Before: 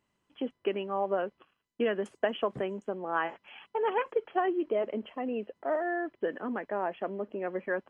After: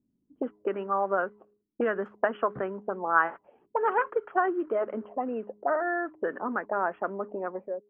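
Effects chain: ending faded out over 0.56 s; de-hum 104.2 Hz, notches 4; envelope low-pass 260–1400 Hz up, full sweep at -30 dBFS

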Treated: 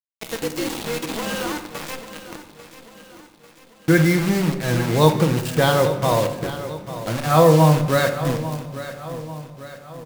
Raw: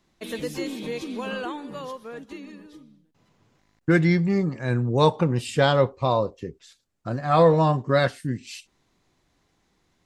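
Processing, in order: bit-crush 5-bit; on a send: feedback echo 0.844 s, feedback 50%, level -13.5 dB; on the sum: shoebox room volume 570 m³, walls mixed, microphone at 0.63 m; gain +2 dB

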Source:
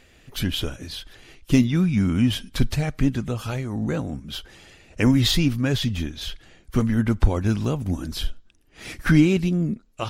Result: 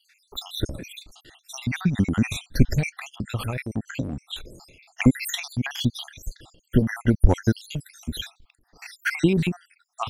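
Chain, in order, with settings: random spectral dropouts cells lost 70%; transient shaper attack +7 dB, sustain +11 dB; gain -2.5 dB

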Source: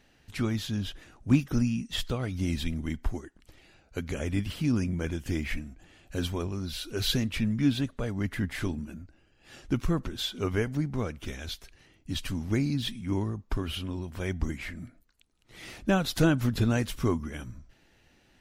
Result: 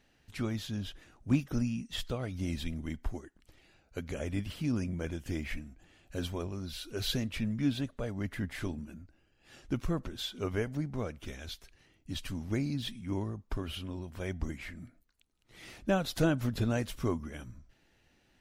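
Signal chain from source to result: dynamic EQ 600 Hz, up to +5 dB, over -48 dBFS, Q 2.2; gain -5.5 dB

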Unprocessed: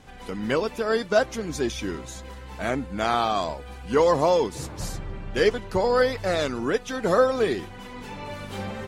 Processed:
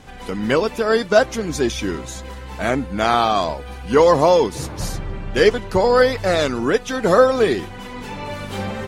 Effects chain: 2.83–5.05 notch 7600 Hz, Q 10; gain +6.5 dB

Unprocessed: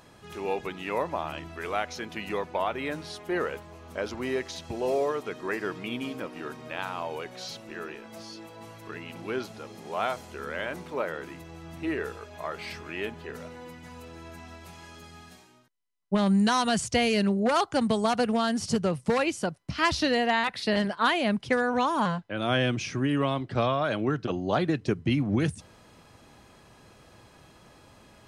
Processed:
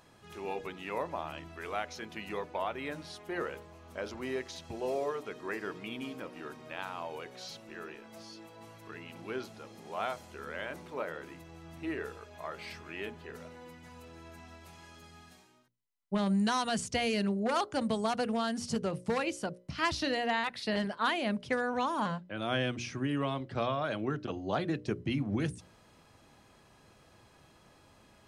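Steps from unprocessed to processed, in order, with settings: notches 60/120/180/240/300/360/420/480/540/600 Hz; gain -6 dB

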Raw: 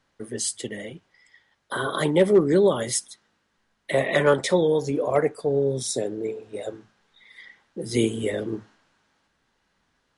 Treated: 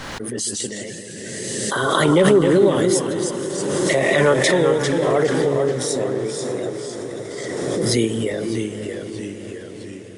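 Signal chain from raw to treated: echoes that change speed 0.132 s, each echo -1 st, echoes 3, each echo -6 dB; diffused feedback echo 0.53 s, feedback 69%, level -12.5 dB; backwards sustainer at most 21 dB/s; gain +1.5 dB

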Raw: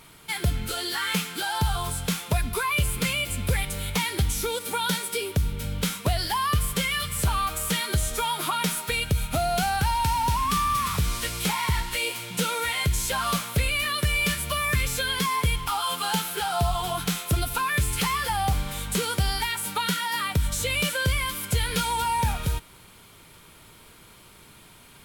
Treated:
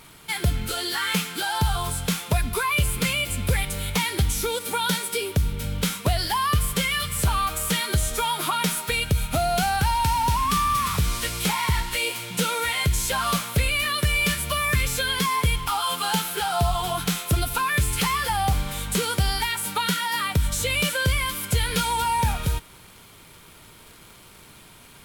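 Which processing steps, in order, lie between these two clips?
crackle 210/s -41 dBFS; gain +2 dB

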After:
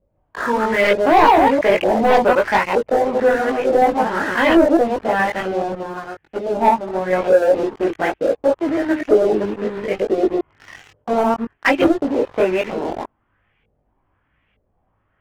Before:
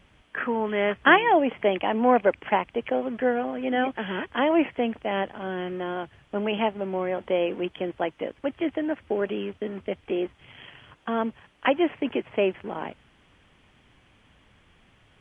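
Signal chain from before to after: reverse delay 0.106 s, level -1 dB; LFO low-pass saw up 1.1 Hz 490–2700 Hz; sample leveller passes 3; chorus voices 6, 0.2 Hz, delay 20 ms, depth 2 ms; 5.75–7.13 upward expander 1.5:1, over -24 dBFS; gain -2.5 dB

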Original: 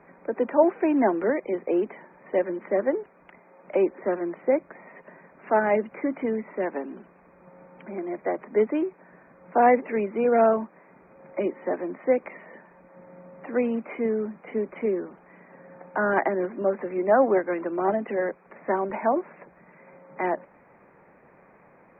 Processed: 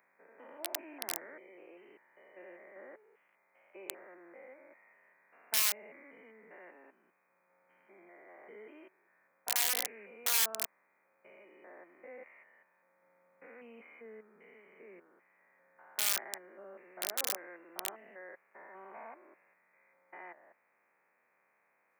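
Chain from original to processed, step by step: stepped spectrum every 0.2 s; wrapped overs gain 17 dB; differentiator

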